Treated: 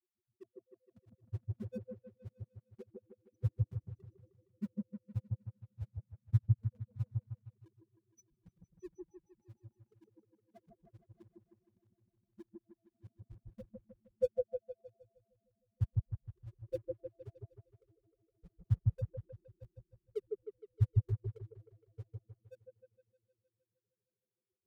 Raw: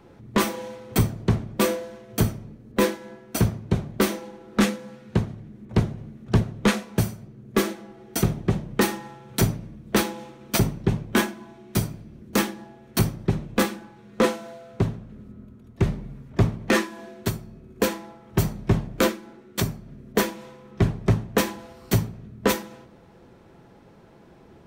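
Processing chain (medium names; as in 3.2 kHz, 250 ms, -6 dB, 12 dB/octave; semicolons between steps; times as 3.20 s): Chebyshev band-stop 750–2600 Hz, order 3; peaking EQ 170 Hz -7 dB 1.4 oct; loudest bins only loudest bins 1; in parallel at -7 dB: small samples zeroed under -39 dBFS; on the sum: granulator 80 ms, grains 7.6 per s, spray 15 ms, pitch spread up and down by 0 st; on a send: delay with an opening low-pass 155 ms, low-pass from 750 Hz, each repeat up 1 oct, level 0 dB; on the sum: upward expansion 2.5:1, over -45 dBFS; trim +3 dB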